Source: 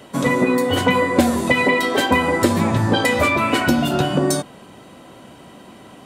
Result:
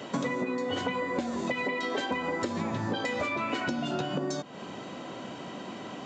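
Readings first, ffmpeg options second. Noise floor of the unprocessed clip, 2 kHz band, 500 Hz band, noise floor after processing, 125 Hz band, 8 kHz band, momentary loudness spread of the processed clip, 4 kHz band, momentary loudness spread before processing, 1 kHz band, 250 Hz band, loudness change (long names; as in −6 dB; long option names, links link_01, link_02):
−44 dBFS, −13.5 dB, −13.0 dB, −42 dBFS, −15.5 dB, −16.5 dB, 10 LU, −12.5 dB, 3 LU, −12.5 dB, −13.5 dB, −14.5 dB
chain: -af "highpass=140,acompressor=threshold=-30dB:ratio=16,aresample=16000,aresample=44100,volume=2.5dB"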